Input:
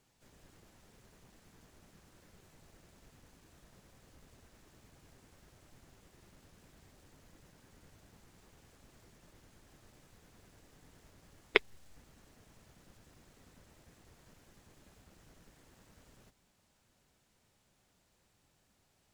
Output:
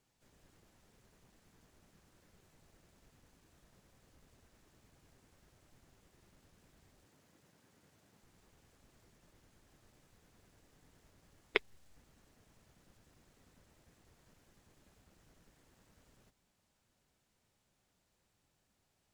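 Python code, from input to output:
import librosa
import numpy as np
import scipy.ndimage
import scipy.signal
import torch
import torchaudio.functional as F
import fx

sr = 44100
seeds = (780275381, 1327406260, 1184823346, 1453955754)

y = fx.highpass(x, sr, hz=120.0, slope=12, at=(7.05, 8.23))
y = y * librosa.db_to_amplitude(-5.5)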